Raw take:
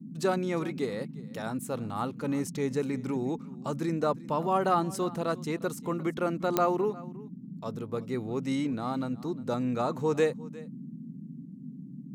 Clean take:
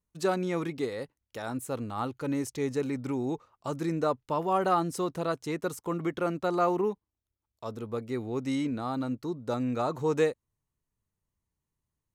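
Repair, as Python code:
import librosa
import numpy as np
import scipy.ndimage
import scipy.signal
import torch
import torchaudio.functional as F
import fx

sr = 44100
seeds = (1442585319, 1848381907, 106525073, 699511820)

y = fx.fix_declick_ar(x, sr, threshold=10.0)
y = fx.noise_reduce(y, sr, print_start_s=11.43, print_end_s=11.93, reduce_db=30.0)
y = fx.fix_echo_inverse(y, sr, delay_ms=355, level_db=-20.0)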